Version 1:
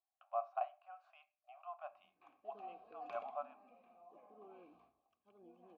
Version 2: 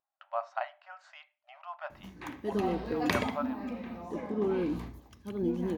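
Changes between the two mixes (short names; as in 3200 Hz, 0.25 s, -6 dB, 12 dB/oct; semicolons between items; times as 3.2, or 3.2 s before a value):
background +11.5 dB; master: remove vowel filter a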